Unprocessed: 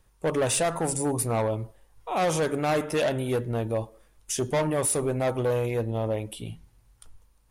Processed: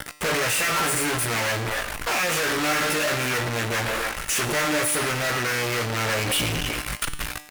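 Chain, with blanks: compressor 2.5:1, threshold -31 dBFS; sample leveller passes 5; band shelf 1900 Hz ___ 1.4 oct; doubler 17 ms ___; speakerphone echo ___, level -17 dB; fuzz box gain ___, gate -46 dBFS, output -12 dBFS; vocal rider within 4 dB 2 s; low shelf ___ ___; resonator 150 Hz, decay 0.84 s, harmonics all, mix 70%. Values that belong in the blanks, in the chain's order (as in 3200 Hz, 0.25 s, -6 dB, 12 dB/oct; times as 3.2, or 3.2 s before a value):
+11 dB, -2.5 dB, 0.27 s, 43 dB, 250 Hz, -6.5 dB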